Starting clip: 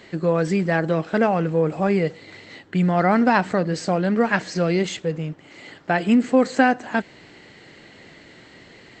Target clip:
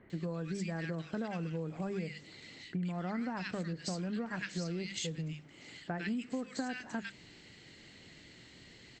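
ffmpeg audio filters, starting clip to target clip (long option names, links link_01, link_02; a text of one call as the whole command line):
ffmpeg -i in.wav -filter_complex "[0:a]equalizer=frequency=660:width=0.43:gain=-12,bandreject=frequency=50:width_type=h:width=6,bandreject=frequency=100:width_type=h:width=6,bandreject=frequency=150:width_type=h:width=6,bandreject=frequency=200:width_type=h:width=6,acrossover=split=1600[link_01][link_02];[link_02]adelay=100[link_03];[link_01][link_03]amix=inputs=2:normalize=0,acompressor=threshold=-31dB:ratio=6,volume=-3dB" out.wav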